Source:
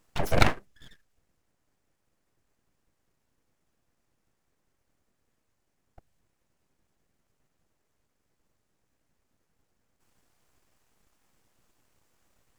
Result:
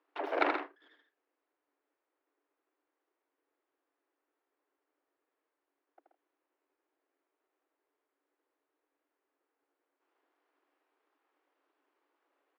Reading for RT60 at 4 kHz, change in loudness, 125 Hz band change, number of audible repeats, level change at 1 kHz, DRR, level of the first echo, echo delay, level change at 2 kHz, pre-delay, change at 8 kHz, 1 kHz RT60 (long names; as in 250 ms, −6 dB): no reverb audible, −7.0 dB, below −40 dB, 3, −3.0 dB, no reverb audible, −5.5 dB, 78 ms, −5.5 dB, no reverb audible, −29.0 dB, no reverb audible